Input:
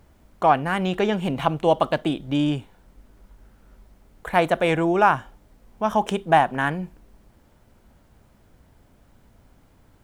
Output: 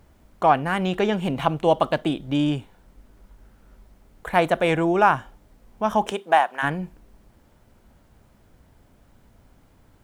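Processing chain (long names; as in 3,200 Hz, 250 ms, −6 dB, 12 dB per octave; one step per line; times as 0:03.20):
0:06.10–0:06.62: high-pass filter 290 Hz → 890 Hz 12 dB per octave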